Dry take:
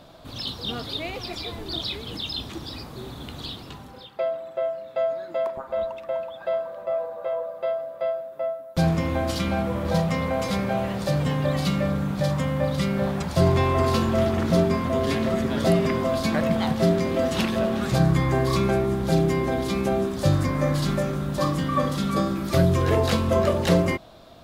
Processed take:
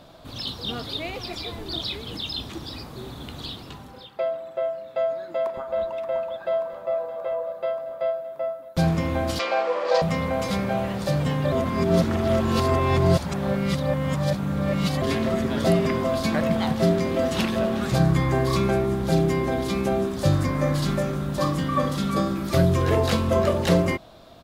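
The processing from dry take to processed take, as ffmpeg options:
ffmpeg -i in.wav -filter_complex "[0:a]asplit=2[link_01][link_02];[link_02]afade=type=in:start_time=4.82:duration=0.01,afade=type=out:start_time=5.78:duration=0.01,aecho=0:1:580|1160|1740|2320|2900|3480|4060|4640|5220|5800|6380|6960:0.334965|0.251224|0.188418|0.141314|0.105985|0.0794889|0.0596167|0.0447125|0.0335344|0.0251508|0.0188631|0.0141473[link_03];[link_01][link_03]amix=inputs=2:normalize=0,asettb=1/sr,asplit=3[link_04][link_05][link_06];[link_04]atrim=end=9.394[link_07];[link_05]atrim=start=9.39:end=10.02,asetpts=PTS-STARTPTS,afade=type=in:duration=0.004:curve=qsin,afade=type=out:start_time=0.626:duration=0.004:curve=qsin,highpass=frequency=410:width=0.5412,highpass=frequency=410:width=1.3066,equalizer=frequency=500:width_type=q:width=4:gain=8,equalizer=frequency=730:width_type=q:width=4:gain=5,equalizer=frequency=1100:width_type=q:width=4:gain=7,equalizer=frequency=1800:width_type=q:width=4:gain=5,equalizer=frequency=2600:width_type=q:width=4:gain=6,equalizer=frequency=4700:width_type=q:width=4:gain=8,lowpass=frequency=7200:width=0.5412,lowpass=frequency=7200:width=1.3066[link_08];[link_06]atrim=start=10.016[link_09];[link_07][link_08]acrossfade=duration=0.004:curve1=hsin:curve2=qsin[link_10];[link_10][link_09]acrossfade=duration=0.004:curve1=qsin:curve2=hsin,asplit=3[link_11][link_12][link_13];[link_11]atrim=end=11.522[link_14];[link_12]atrim=start=11.518:end=15.022,asetpts=PTS-STARTPTS,areverse[link_15];[link_13]atrim=start=15.018[link_16];[link_14][link_15]acrossfade=duration=0.004:curve1=hsin:curve2=hsin[link_17];[link_17][link_16]acrossfade=duration=0.004:curve1=hsin:curve2=hsin" out.wav

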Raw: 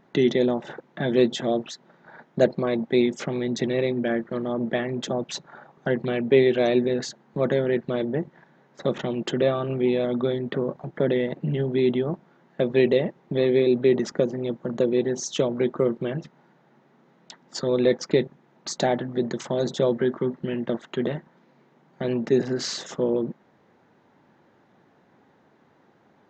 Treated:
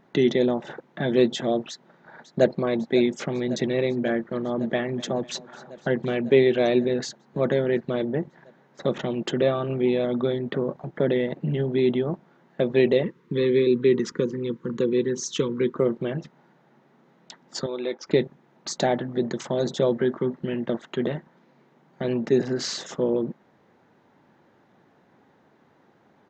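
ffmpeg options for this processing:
ffmpeg -i in.wav -filter_complex "[0:a]asplit=2[link_01][link_02];[link_02]afade=type=in:start_time=1.69:duration=0.01,afade=type=out:start_time=2.5:duration=0.01,aecho=0:1:550|1100|1650|2200|2750|3300|3850|4400|4950|5500|6050|6600:0.177828|0.142262|0.11381|0.0910479|0.0728383|0.0582707|0.0466165|0.0372932|0.0298346|0.0238677|0.0190941|0.0152753[link_03];[link_01][link_03]amix=inputs=2:normalize=0,asettb=1/sr,asplit=3[link_04][link_05][link_06];[link_04]atrim=end=4.274[link_07];[link_05]atrim=start=4.27:end=6.33,asetpts=PTS-STARTPTS,afade=type=in:duration=0.004:curve=qsin,afade=type=out:start_time=2.056:duration=0.004:curve=qsin,aecho=1:1:249|498|747|996:0.0891|0.0508|0.029|0.0165,atrim=end_sample=90846[link_08];[link_06]atrim=start=6.326[link_09];[link_07][link_08]acrossfade=duration=0.004:curve1=hsin:curve2=qsin[link_10];[link_10][link_09]acrossfade=duration=0.004:curve1=qsin:curve2=hsin,asettb=1/sr,asplit=3[link_11][link_12][link_13];[link_11]atrim=end=13.034[link_14];[link_12]atrim=start=13.03:end=15.76,asetpts=PTS-STARTPTS,afade=type=in:duration=0.004:curve=qsin,afade=type=out:start_time=2.726:duration=0.004:curve=qsin,asuperstop=centerf=690:order=8:qfactor=1.6[link_15];[link_13]atrim=start=15.756[link_16];[link_14][link_15]acrossfade=duration=0.004:curve1=hsin:curve2=qsin[link_17];[link_17][link_16]acrossfade=duration=0.004:curve1=qsin:curve2=hsin,asettb=1/sr,asplit=3[link_18][link_19][link_20];[link_18]atrim=end=17.664[link_21];[link_19]atrim=start=17.66:end=18.07,asetpts=PTS-STARTPTS,afade=type=in:duration=0.004:curve=qsin,afade=type=out:start_time=0.406:duration=0.004:curve=qsin,highpass=470,equalizer=frequency=480:width_type=q:width=4:gain=-8,equalizer=frequency=690:width_type=q:width=4:gain=-7,equalizer=frequency=1100:width_type=q:width=4:gain=-4,equalizer=frequency=1800:width_type=q:width=4:gain=-9,equalizer=frequency=3000:width_type=q:width=4:gain=-3,equalizer=frequency=4300:width_type=q:width=4:gain=-9,lowpass=frequency=5300:width=0.5412,lowpass=frequency=5300:width=1.3066[link_22];[link_20]atrim=start=18.066[link_23];[link_21][link_22]acrossfade=duration=0.004:curve1=hsin:curve2=qsin[link_24];[link_24][link_23]acrossfade=duration=0.004:curve1=qsin:curve2=hsin" out.wav

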